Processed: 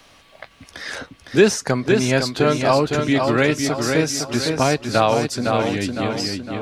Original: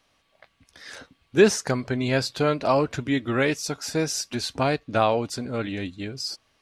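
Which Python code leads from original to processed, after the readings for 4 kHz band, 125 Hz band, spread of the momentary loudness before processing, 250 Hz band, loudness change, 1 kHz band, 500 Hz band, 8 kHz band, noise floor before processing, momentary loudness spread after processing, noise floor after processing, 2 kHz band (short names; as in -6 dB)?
+5.5 dB, +6.0 dB, 13 LU, +6.0 dB, +5.5 dB, +5.5 dB, +5.0 dB, +5.0 dB, -68 dBFS, 8 LU, -51 dBFS, +6.0 dB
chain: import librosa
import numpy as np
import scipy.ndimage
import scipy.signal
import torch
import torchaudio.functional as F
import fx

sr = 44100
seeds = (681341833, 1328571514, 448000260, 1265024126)

p1 = x + fx.echo_feedback(x, sr, ms=508, feedback_pct=38, wet_db=-6.0, dry=0)
p2 = fx.band_squash(p1, sr, depth_pct=40)
y = p2 * 10.0 ** (4.5 / 20.0)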